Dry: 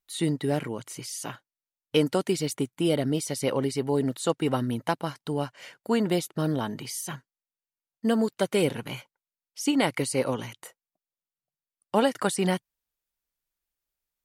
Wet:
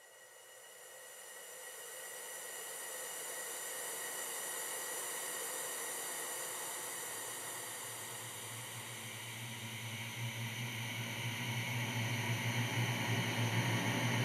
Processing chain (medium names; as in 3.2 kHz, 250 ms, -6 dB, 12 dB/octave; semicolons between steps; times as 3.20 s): reverse the whole clip; Paulstretch 47×, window 0.25 s, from 3.48 s; trim +3.5 dB